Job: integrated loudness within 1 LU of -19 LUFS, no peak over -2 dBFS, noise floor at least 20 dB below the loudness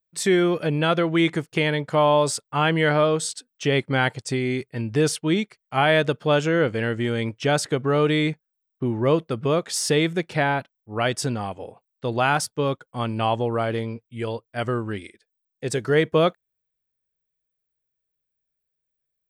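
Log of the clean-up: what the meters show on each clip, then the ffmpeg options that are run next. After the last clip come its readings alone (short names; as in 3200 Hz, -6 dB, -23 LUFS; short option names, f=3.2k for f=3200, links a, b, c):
loudness -23.0 LUFS; peak -7.5 dBFS; loudness target -19.0 LUFS
-> -af "volume=4dB"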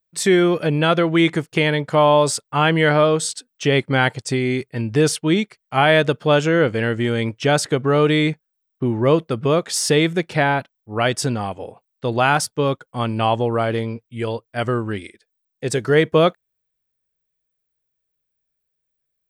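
loudness -19.0 LUFS; peak -3.5 dBFS; noise floor -77 dBFS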